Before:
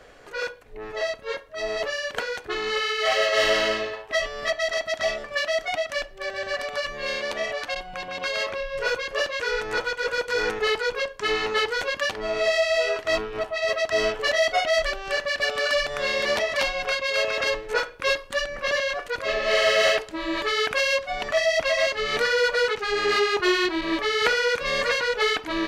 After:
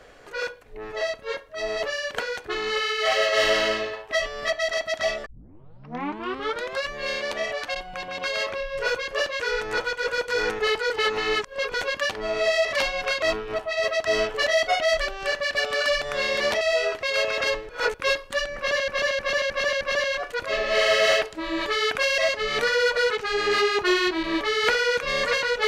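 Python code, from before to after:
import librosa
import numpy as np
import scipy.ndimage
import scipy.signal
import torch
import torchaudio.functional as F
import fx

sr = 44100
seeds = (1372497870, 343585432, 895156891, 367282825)

y = fx.edit(x, sr, fx.tape_start(start_s=5.26, length_s=1.62),
    fx.reverse_span(start_s=10.9, length_s=0.84),
    fx.swap(start_s=12.65, length_s=0.42, other_s=16.46, other_length_s=0.57),
    fx.reverse_span(start_s=17.69, length_s=0.25),
    fx.repeat(start_s=18.57, length_s=0.31, count=5),
    fx.cut(start_s=20.94, length_s=0.82), tone=tone)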